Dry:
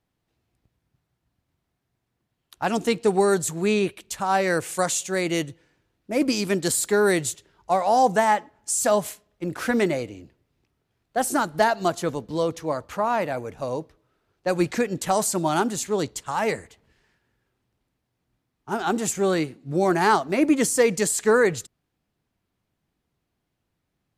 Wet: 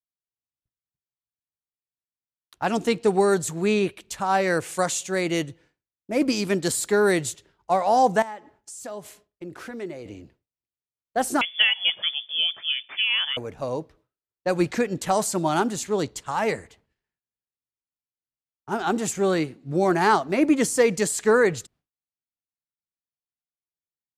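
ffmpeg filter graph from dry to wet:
-filter_complex "[0:a]asettb=1/sr,asplit=3[s0][s1][s2];[s0]atrim=end=8.224[s3];[s1]atrim=start=8.22:end=10.06,asetpts=PTS-STARTPTS,afade=t=in:d=0.004:c=qsin,afade=t=out:st=1.836:d=0.004:c=qsin,acompressor=threshold=0.00891:ratio=2.5:attack=3.2:release=140:knee=1:detection=peak,equalizer=f=380:t=o:w=0.39:g=6.5[s4];[s2]atrim=start=10.056[s5];[s3][s4]acrossfade=d=0.004:c1=hsin:c2=qsin[s6];[s6][s5]acrossfade=d=0.004:c1=qsin:c2=hsin,asettb=1/sr,asplit=3[s7][s8][s9];[s7]atrim=end=11.414[s10];[s8]atrim=start=11.41:end=13.37,asetpts=PTS-STARTPTS,afade=t=in:d=0.004:c=qsin,afade=t=out:st=1.956:d=0.004:c=qsin,lowpass=f=3100:t=q:w=0.5098,lowpass=f=3100:t=q:w=0.6013,lowpass=f=3100:t=q:w=0.9,lowpass=f=3100:t=q:w=2.563,afreqshift=-3600,highpass=110[s11];[s9]atrim=start=13.366[s12];[s10][s11]acrossfade=d=0.004:c1=hsin:c2=qsin[s13];[s13][s12]acrossfade=d=0.004:c1=qsin:c2=hsin,highshelf=f=8700:g=-6,agate=range=0.0224:threshold=0.00282:ratio=3:detection=peak"

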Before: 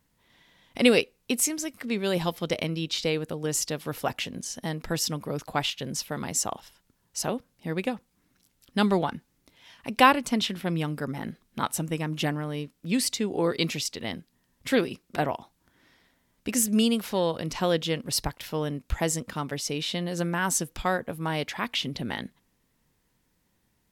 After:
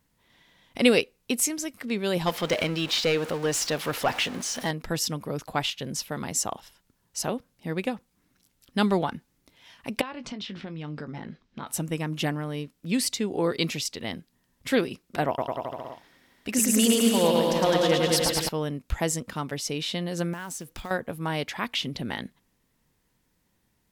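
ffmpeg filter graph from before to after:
-filter_complex "[0:a]asettb=1/sr,asplit=3[s0][s1][s2];[s0]atrim=end=2.264[s3];[s1]atrim=start=2.26:end=4.71,asetpts=PTS-STARTPTS,afade=t=in:d=0.004:c=qsin,afade=t=out:st=2.446:d=0.004:c=qsin,aeval=exprs='val(0)+0.5*0.0133*sgn(val(0))':c=same,asplit=2[s4][s5];[s5]highpass=f=720:p=1,volume=5.01,asoftclip=type=tanh:threshold=0.211[s6];[s4][s6]amix=inputs=2:normalize=0,lowpass=f=3500:p=1,volume=0.501[s7];[s2]atrim=start=4.706[s8];[s3][s7]acrossfade=d=0.004:c1=hsin:c2=qsin[s9];[s9][s8]acrossfade=d=0.004:c1=qsin:c2=hsin,asettb=1/sr,asplit=3[s10][s11][s12];[s10]atrim=end=10.014[s13];[s11]atrim=start=10.01:end=11.67,asetpts=PTS-STARTPTS,afade=t=in:d=0.004:c=qsin,afade=t=out:st=1.656:d=0.004:c=qsin,lowpass=f=5500:w=0.5412,lowpass=f=5500:w=1.3066,acompressor=threshold=0.0251:ratio=12:attack=3.2:release=140:knee=1:detection=peak,asplit=2[s14][s15];[s15]adelay=20,volume=0.266[s16];[s14][s16]amix=inputs=2:normalize=0,atrim=end_sample=73206[s17];[s12]atrim=start=11.666[s18];[s13][s17]acrossfade=d=0.004:c1=hsin:c2=qsin[s19];[s19][s18]acrossfade=d=0.004:c1=qsin:c2=hsin,asettb=1/sr,asplit=3[s20][s21][s22];[s20]atrim=end=15.274[s23];[s21]atrim=start=15.27:end=18.49,asetpts=PTS-STARTPTS,afade=t=in:d=0.004:c=qsin,afade=t=out:st=3.216:d=0.004:c=qsin,aphaser=in_gain=1:out_gain=1:delay=4.5:decay=0.38:speed=1.5:type=sinusoidal,lowshelf=f=120:g=-9,aecho=1:1:110|209|298.1|378.3|450.5|515.4|573.9|626.5:0.794|0.631|0.501|0.398|0.316|0.251|0.2|0.158,atrim=end_sample=142002[s24];[s22]atrim=start=18.486[s25];[s23][s24]acrossfade=d=0.004:c1=hsin:c2=qsin[s26];[s26][s25]acrossfade=d=0.004:c1=qsin:c2=hsin,asettb=1/sr,asplit=3[s27][s28][s29];[s27]atrim=end=20.334[s30];[s28]atrim=start=20.33:end=20.91,asetpts=PTS-STARTPTS,afade=t=in:d=0.004:c=qsin,afade=t=out:st=0.576:d=0.004:c=qsin,acompressor=threshold=0.0224:ratio=6:attack=3.2:release=140:knee=1:detection=peak,acrusher=bits=4:mode=log:mix=0:aa=0.000001[s31];[s29]atrim=start=20.906[s32];[s30][s31]acrossfade=d=0.004:c1=hsin:c2=qsin[s33];[s33][s32]acrossfade=d=0.004:c1=qsin:c2=hsin"

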